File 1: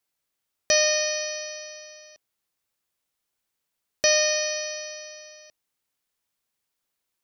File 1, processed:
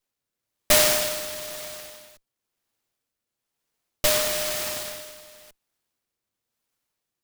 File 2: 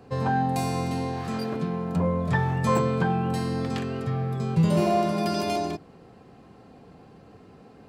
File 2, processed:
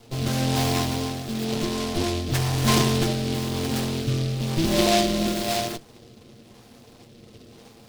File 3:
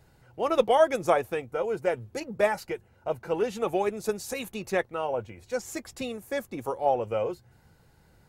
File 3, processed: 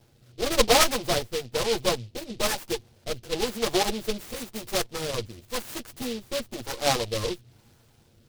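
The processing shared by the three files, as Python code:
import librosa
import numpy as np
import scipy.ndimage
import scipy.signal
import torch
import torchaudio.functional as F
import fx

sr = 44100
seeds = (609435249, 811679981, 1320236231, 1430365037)

y = fx.lower_of_two(x, sr, delay_ms=8.6)
y = fx.rotary(y, sr, hz=1.0)
y = fx.noise_mod_delay(y, sr, seeds[0], noise_hz=3500.0, depth_ms=0.14)
y = y * 10.0 ** (5.0 / 20.0)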